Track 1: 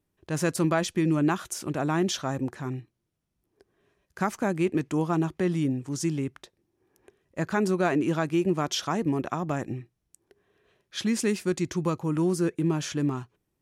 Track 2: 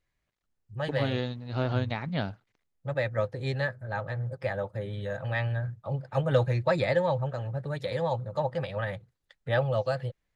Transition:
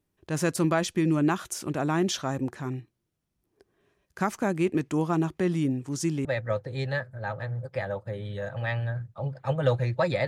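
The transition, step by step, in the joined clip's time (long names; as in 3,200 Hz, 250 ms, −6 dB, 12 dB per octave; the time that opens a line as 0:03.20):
track 1
0:06.25: continue with track 2 from 0:02.93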